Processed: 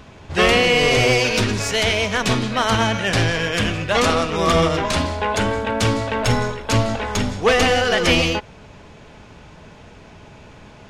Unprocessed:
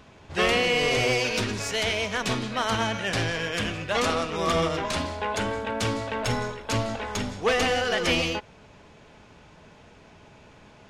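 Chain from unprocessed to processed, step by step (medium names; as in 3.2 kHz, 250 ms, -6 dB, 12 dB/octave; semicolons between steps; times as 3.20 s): bass shelf 140 Hz +5 dB; trim +7 dB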